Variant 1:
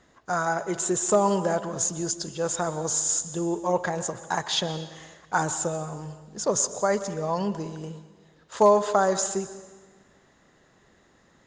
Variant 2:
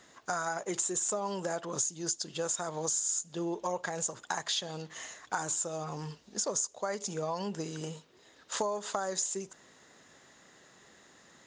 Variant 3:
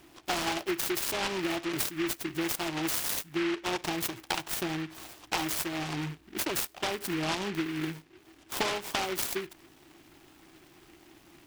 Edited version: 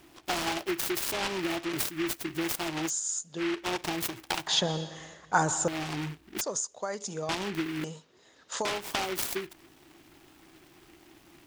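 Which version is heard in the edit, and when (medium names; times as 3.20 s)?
3
2.88–3.40 s: from 2, crossfade 0.06 s
4.47–5.68 s: from 1
6.41–7.29 s: from 2
7.84–8.65 s: from 2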